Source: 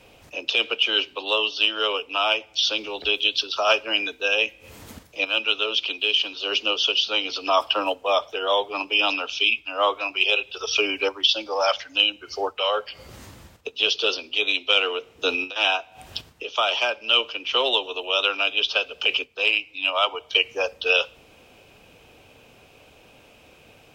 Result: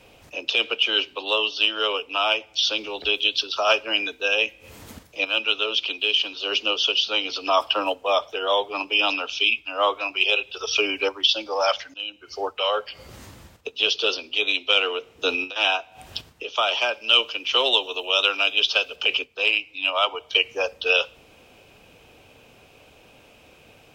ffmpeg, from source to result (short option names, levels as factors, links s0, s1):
-filter_complex "[0:a]asettb=1/sr,asplit=3[s0][s1][s2];[s0]atrim=end=16.934[s3];[s1]atrim=start=16.93:end=18.96,asetpts=PTS-STARTPTS,afade=t=in:d=0.004:c=qsin,afade=t=out:st=2.026:d=0.004:c=qsin,aemphasis=mode=production:type=cd[s4];[s2]atrim=start=18.956[s5];[s3][s4]acrossfade=d=0.004:c1=hsin:c2=qsin[s6];[s6][s5]acrossfade=d=0.004:c1=qsin:c2=hsin,asplit=2[s7][s8];[s7]atrim=end=11.94,asetpts=PTS-STARTPTS,afade=t=out:st=11.936:d=0.004:c=hsin:silence=0.105925[s9];[s8]atrim=start=11.94,asetpts=PTS-STARTPTS,afade=t=in:d=0.61:silence=0.105925[s10];[s9][s10]concat=n=2:v=0:a=1"